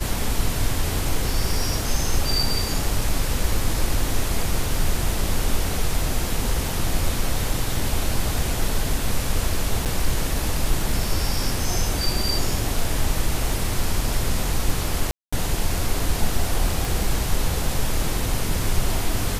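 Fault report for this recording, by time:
9.85–9.86 s: dropout 7.9 ms
15.11–15.32 s: dropout 215 ms
16.85 s: pop

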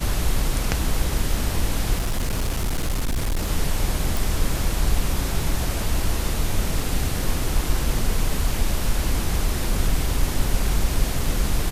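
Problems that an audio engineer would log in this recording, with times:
1.97–3.48 s: clipped -19 dBFS
4.17 s: pop

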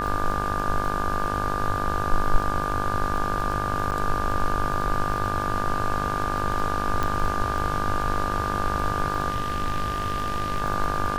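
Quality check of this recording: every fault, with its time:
buzz 50 Hz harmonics 34 -30 dBFS
crackle 12 per s -28 dBFS
whine 1.2 kHz -28 dBFS
3.91–3.92 s: dropout 8.7 ms
7.03 s: pop -12 dBFS
9.30–10.62 s: clipped -20 dBFS

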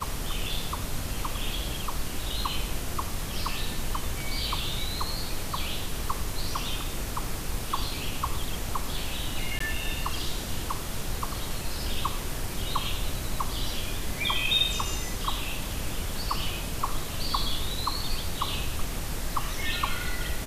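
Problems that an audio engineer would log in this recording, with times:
9.59–9.60 s: dropout 14 ms

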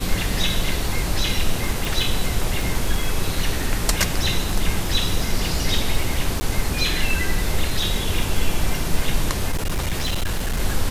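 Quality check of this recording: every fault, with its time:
crackle 15 per s -23 dBFS
1.85 s: pop
6.40–6.41 s: dropout 10 ms
9.51–10.60 s: clipped -18.5 dBFS

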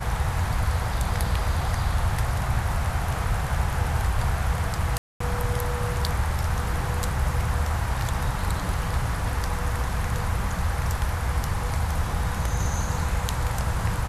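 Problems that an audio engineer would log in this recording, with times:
4.98–5.20 s: dropout 224 ms

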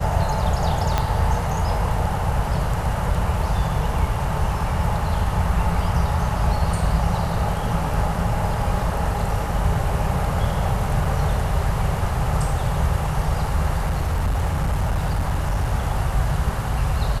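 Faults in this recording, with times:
0.98 s: pop -6 dBFS
11.05 s: dropout 3.1 ms
13.85–15.73 s: clipped -17 dBFS

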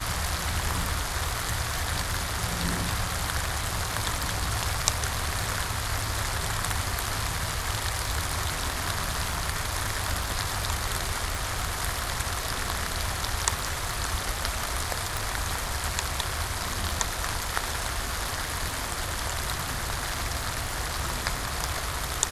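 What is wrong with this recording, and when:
crackle 30 per s -33 dBFS
11.35 s: pop
15.17 s: pop

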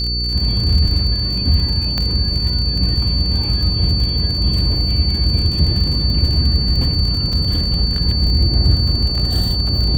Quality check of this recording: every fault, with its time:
crackle 48 per s -22 dBFS
hum 60 Hz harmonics 8 -22 dBFS
whine 4.5 kHz -20 dBFS
1.98 s: pop -7 dBFS
7.33 s: dropout 3.6 ms

